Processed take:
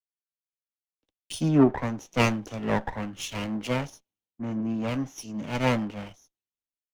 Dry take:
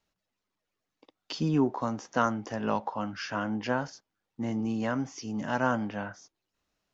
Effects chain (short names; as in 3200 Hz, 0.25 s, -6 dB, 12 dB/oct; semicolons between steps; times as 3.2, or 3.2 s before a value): minimum comb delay 0.32 ms; in parallel at -6 dB: soft clip -30 dBFS, distortion -7 dB; on the sum: three-band expander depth 100%